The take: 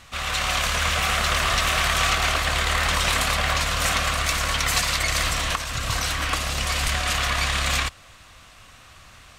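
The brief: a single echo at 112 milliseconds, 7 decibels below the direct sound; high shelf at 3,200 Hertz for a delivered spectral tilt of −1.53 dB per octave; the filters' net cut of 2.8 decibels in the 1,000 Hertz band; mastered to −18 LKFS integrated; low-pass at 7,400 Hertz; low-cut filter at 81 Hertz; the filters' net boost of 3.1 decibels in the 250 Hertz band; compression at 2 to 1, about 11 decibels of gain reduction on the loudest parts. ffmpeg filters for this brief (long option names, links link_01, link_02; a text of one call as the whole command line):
ffmpeg -i in.wav -af "highpass=81,lowpass=7400,equalizer=frequency=250:width_type=o:gain=4.5,equalizer=frequency=1000:width_type=o:gain=-4.5,highshelf=frequency=3200:gain=4.5,acompressor=threshold=-39dB:ratio=2,aecho=1:1:112:0.447,volume=13dB" out.wav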